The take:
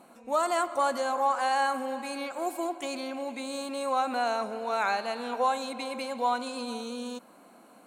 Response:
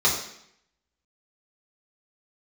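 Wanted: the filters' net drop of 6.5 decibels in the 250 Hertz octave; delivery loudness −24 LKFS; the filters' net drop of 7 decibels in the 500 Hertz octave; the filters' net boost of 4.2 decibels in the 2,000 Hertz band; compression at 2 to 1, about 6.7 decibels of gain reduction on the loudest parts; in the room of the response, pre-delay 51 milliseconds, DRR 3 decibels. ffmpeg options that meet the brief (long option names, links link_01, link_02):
-filter_complex "[0:a]equalizer=frequency=250:width_type=o:gain=-5,equalizer=frequency=500:width_type=o:gain=-8.5,equalizer=frequency=2000:width_type=o:gain=6.5,acompressor=threshold=-35dB:ratio=2,asplit=2[link_01][link_02];[1:a]atrim=start_sample=2205,adelay=51[link_03];[link_02][link_03]afir=irnorm=-1:irlink=0,volume=-18dB[link_04];[link_01][link_04]amix=inputs=2:normalize=0,volume=10dB"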